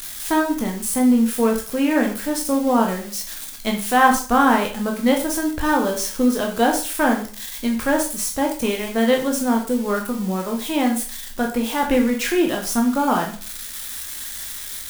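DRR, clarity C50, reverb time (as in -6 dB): 1.0 dB, 8.5 dB, 0.40 s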